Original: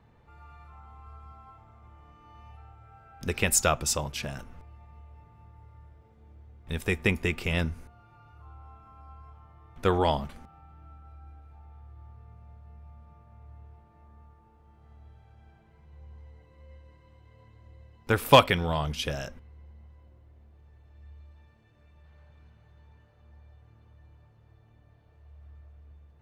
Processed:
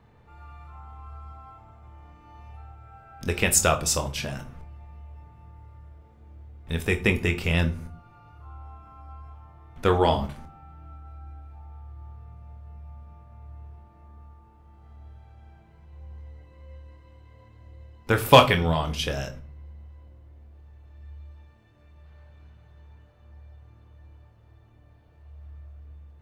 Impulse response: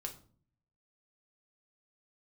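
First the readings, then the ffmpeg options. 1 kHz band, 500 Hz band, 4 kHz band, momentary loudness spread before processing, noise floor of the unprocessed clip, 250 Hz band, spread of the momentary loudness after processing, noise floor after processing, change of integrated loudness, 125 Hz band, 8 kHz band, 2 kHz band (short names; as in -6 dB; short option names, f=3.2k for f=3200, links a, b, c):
+3.0 dB, +3.5 dB, +3.0 dB, 19 LU, -59 dBFS, +3.5 dB, 18 LU, -55 dBFS, +3.5 dB, +4.5 dB, +3.5 dB, +3.5 dB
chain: -filter_complex "[0:a]asplit=2[a][b];[1:a]atrim=start_sample=2205,adelay=24[c];[b][c]afir=irnorm=-1:irlink=0,volume=-5dB[d];[a][d]amix=inputs=2:normalize=0,volume=2.5dB"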